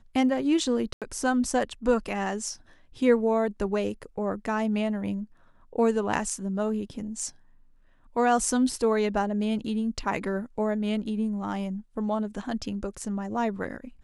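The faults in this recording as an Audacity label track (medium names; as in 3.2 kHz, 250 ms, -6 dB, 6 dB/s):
0.930000	1.020000	dropout 87 ms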